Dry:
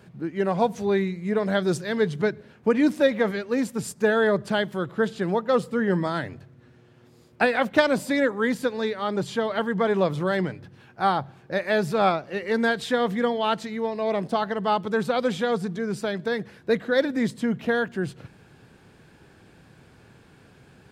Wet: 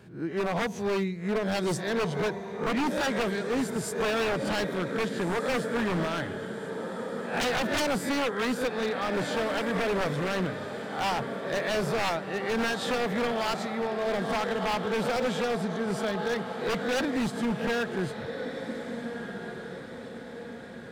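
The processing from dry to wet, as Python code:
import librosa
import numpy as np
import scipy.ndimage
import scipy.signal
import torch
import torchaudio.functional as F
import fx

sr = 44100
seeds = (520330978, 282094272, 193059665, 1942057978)

y = fx.spec_swells(x, sr, rise_s=0.36)
y = fx.echo_diffused(y, sr, ms=1600, feedback_pct=50, wet_db=-10.0)
y = 10.0 ** (-19.0 / 20.0) * (np.abs((y / 10.0 ** (-19.0 / 20.0) + 3.0) % 4.0 - 2.0) - 1.0)
y = y * librosa.db_to_amplitude(-3.0)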